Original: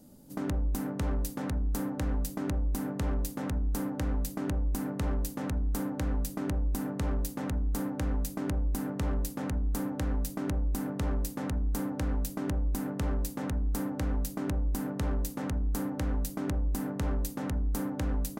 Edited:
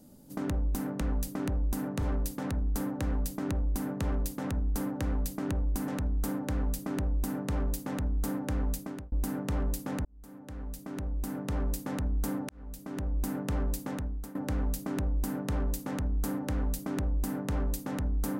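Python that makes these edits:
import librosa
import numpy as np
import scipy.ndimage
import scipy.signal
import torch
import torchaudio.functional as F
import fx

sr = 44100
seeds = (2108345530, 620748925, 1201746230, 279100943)

y = fx.edit(x, sr, fx.cut(start_s=4.87, length_s=0.52),
    fx.duplicate(start_s=6.03, length_s=1.01, to_s=1.01),
    fx.fade_out_span(start_s=8.25, length_s=0.38),
    fx.fade_in_span(start_s=9.56, length_s=1.66),
    fx.fade_in_span(start_s=12.0, length_s=0.76),
    fx.fade_out_to(start_s=13.36, length_s=0.5, floor_db=-16.5), tone=tone)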